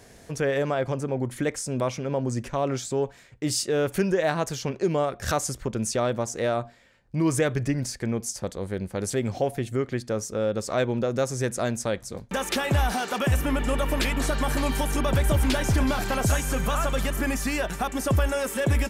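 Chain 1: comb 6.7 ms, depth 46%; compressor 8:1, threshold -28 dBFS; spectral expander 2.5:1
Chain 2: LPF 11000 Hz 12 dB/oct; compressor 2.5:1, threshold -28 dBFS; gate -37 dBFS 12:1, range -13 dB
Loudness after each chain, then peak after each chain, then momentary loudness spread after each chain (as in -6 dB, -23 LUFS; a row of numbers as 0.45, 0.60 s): -33.5, -31.0 LUFS; -16.5, -15.5 dBFS; 9, 4 LU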